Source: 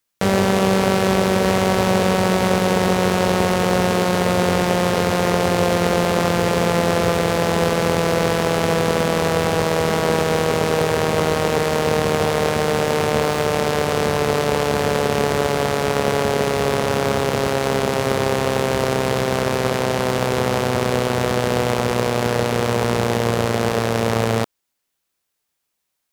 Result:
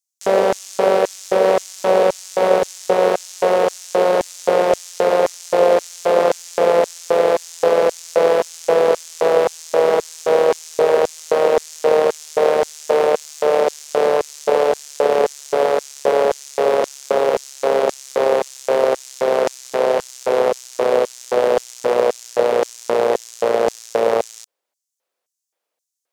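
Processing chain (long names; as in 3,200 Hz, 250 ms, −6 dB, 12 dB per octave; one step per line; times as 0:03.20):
spectral tilt −2 dB per octave
auto-filter high-pass square 1.9 Hz 520–6,500 Hz
level −1 dB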